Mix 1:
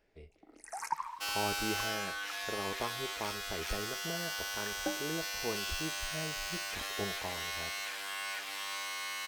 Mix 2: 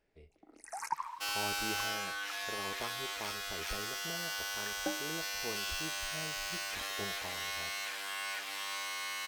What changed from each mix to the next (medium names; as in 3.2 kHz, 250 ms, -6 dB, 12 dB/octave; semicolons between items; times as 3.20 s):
speech -5.0 dB; first sound: send off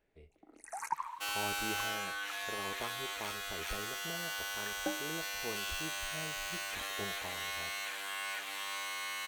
master: add peaking EQ 5.1 kHz -10 dB 0.26 oct